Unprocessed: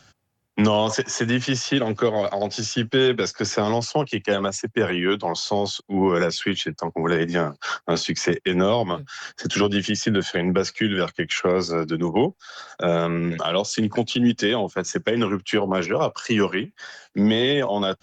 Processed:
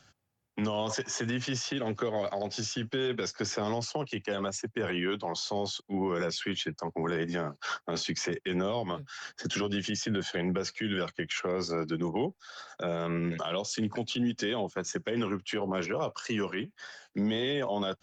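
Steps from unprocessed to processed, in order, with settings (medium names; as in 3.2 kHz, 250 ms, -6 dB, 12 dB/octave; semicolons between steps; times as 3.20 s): peak limiter -15.5 dBFS, peak gain reduction 7.5 dB; trim -7 dB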